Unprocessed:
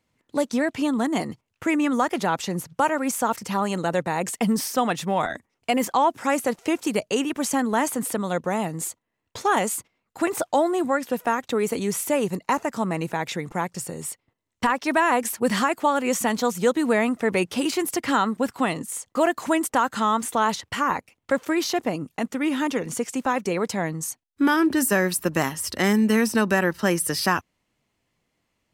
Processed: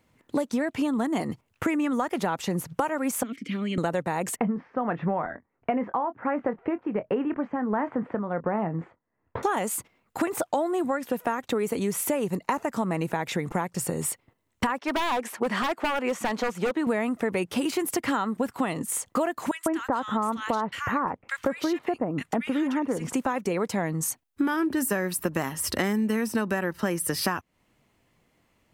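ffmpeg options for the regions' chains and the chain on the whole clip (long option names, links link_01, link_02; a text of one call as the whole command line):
ffmpeg -i in.wav -filter_complex "[0:a]asettb=1/sr,asplit=3[link_01][link_02][link_03];[link_01]atrim=end=3.234[link_04];[link_02]atrim=start=3.23:end=3.78,asetpts=PTS-STARTPTS,afade=type=in:duration=0.004:curve=qsin,afade=type=out:start_time=0.546:duration=0.004:curve=qsin,acontrast=28,asplit=3[link_05][link_06][link_07];[link_05]bandpass=frequency=270:width_type=q:width=8,volume=0dB[link_08];[link_06]bandpass=frequency=2290:width_type=q:width=8,volume=-6dB[link_09];[link_07]bandpass=frequency=3010:width_type=q:width=8,volume=-9dB[link_10];[link_08][link_09][link_10]amix=inputs=3:normalize=0[link_11];[link_03]atrim=start=3.776[link_12];[link_04][link_11]acrossfade=duration=0.004:curve1=hsin:curve2=qsin[link_13];[link_13][link_12]acrossfade=duration=0.004:curve1=qsin:curve2=hsin,asettb=1/sr,asplit=3[link_14][link_15][link_16];[link_14]atrim=end=4.364[link_17];[link_15]atrim=start=4.36:end=9.43,asetpts=PTS-STARTPTS,afade=type=in:duration=0.004:curve=qsin,afade=type=out:start_time=5.066:duration=0.004:curve=qsin,lowpass=frequency=1900:width=0.5412,lowpass=frequency=1900:width=1.3066,tremolo=f=1.4:d=0.71,asplit=2[link_18][link_19];[link_19]adelay=24,volume=-12.5dB[link_20];[link_18][link_20]amix=inputs=2:normalize=0,atrim=end_sample=223587[link_21];[link_16]atrim=start=9.426[link_22];[link_17][link_21]acrossfade=duration=0.004:curve1=hsin:curve2=qsin[link_23];[link_23][link_22]acrossfade=duration=0.004:curve1=qsin:curve2=hsin,asettb=1/sr,asplit=3[link_24][link_25][link_26];[link_24]atrim=end=14.794[link_27];[link_25]atrim=start=14.79:end=16.87,asetpts=PTS-STARTPTS,afade=type=in:duration=0.004:curve=qsin,afade=type=out:start_time=2.076:duration=0.004:curve=qsin,highpass=frequency=510:poles=1,aemphasis=mode=reproduction:type=75fm,aeval=exprs='0.106*(abs(mod(val(0)/0.106+3,4)-2)-1)':channel_layout=same[link_28];[link_26]atrim=start=16.866[link_29];[link_27][link_28]acrossfade=duration=0.004:curve1=hsin:curve2=qsin[link_30];[link_30][link_29]acrossfade=duration=0.004:curve1=qsin:curve2=hsin,asettb=1/sr,asplit=3[link_31][link_32][link_33];[link_31]atrim=end=19.514[link_34];[link_32]atrim=start=19.51:end=23.13,asetpts=PTS-STARTPTS,afade=type=in:duration=0.004:curve=qsin,afade=type=out:start_time=3.616:duration=0.004:curve=qsin,aemphasis=mode=reproduction:type=cd,acrossover=split=1700[link_35][link_36];[link_35]adelay=150[link_37];[link_37][link_36]amix=inputs=2:normalize=0,atrim=end_sample=159642[link_38];[link_33]atrim=start=23.126[link_39];[link_34][link_38]acrossfade=duration=0.004:curve1=hsin:curve2=qsin[link_40];[link_40][link_39]acrossfade=duration=0.004:curve1=qsin:curve2=hsin,equalizer=frequency=5300:width=0.65:gain=-5.5,acompressor=threshold=-32dB:ratio=6,volume=8dB" out.wav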